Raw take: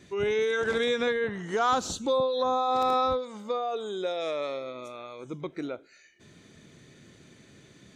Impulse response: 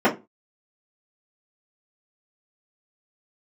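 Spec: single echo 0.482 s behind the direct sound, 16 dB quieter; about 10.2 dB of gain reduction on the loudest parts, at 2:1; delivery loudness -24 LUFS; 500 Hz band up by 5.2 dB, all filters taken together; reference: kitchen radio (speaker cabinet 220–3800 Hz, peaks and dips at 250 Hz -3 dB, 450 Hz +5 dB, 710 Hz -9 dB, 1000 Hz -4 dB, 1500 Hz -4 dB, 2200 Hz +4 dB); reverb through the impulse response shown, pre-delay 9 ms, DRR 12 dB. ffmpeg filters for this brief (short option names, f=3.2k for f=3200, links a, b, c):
-filter_complex "[0:a]equalizer=f=500:t=o:g=3.5,acompressor=threshold=-39dB:ratio=2,aecho=1:1:482:0.158,asplit=2[a][b];[1:a]atrim=start_sample=2205,adelay=9[c];[b][c]afir=irnorm=-1:irlink=0,volume=-32dB[d];[a][d]amix=inputs=2:normalize=0,highpass=220,equalizer=f=250:t=q:w=4:g=-3,equalizer=f=450:t=q:w=4:g=5,equalizer=f=710:t=q:w=4:g=-9,equalizer=f=1k:t=q:w=4:g=-4,equalizer=f=1.5k:t=q:w=4:g=-4,equalizer=f=2.2k:t=q:w=4:g=4,lowpass=f=3.8k:w=0.5412,lowpass=f=3.8k:w=1.3066,volume=10dB"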